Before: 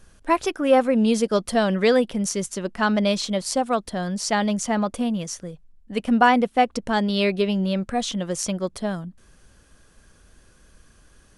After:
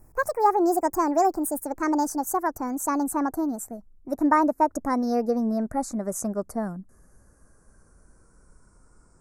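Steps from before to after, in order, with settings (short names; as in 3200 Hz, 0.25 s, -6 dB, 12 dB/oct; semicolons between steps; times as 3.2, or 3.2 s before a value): speed glide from 162% -> 85%; Butterworth band-stop 3200 Hz, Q 0.58; gain -2 dB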